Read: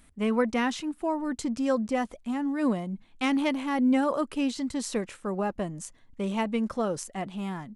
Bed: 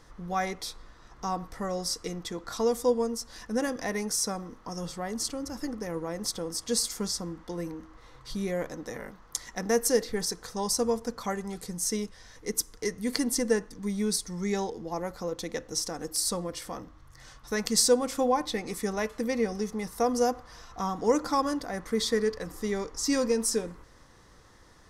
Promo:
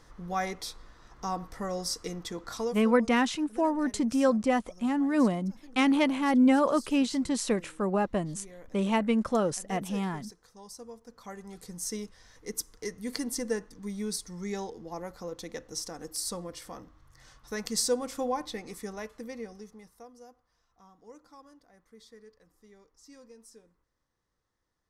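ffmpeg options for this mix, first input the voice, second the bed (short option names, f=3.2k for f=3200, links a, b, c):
-filter_complex "[0:a]adelay=2550,volume=2dB[a];[1:a]volume=11.5dB,afade=t=out:st=2.51:d=0.33:silence=0.141254,afade=t=in:st=11.04:d=0.74:silence=0.223872,afade=t=out:st=18.35:d=1.76:silence=0.0891251[b];[a][b]amix=inputs=2:normalize=0"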